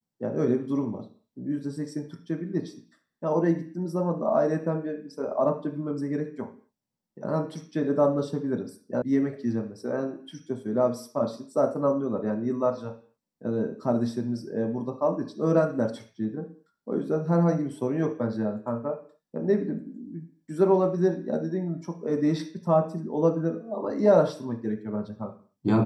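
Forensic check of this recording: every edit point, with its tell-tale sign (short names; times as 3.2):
9.02 sound cut off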